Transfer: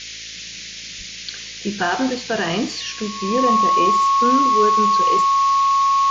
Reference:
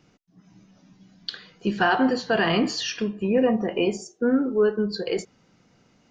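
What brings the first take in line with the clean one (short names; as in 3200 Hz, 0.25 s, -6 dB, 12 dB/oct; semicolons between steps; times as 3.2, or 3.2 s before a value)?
de-hum 54.9 Hz, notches 11; notch 1100 Hz, Q 30; 0.97–1.09 HPF 140 Hz 24 dB/oct; noise print and reduce 27 dB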